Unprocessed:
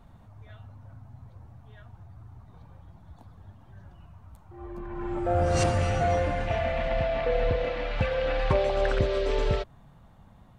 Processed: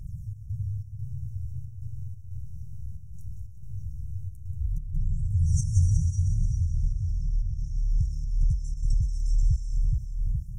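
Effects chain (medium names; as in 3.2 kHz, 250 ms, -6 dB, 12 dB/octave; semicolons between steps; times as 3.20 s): trance gate "xx.xx.xx" 91 bpm -12 dB; in parallel at 0 dB: peak limiter -21.5 dBFS, peak gain reduction 10 dB; on the sum: phaser 0.19 Hz, delay 3.5 ms, feedback 45%; on a send: two-band feedback delay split 700 Hz, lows 420 ms, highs 182 ms, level -8 dB; on the sum: compression 3:1, threshold -25 dBFS, peak gain reduction 10 dB; brick-wall FIR band-stop 170–5300 Hz; trim +5.5 dB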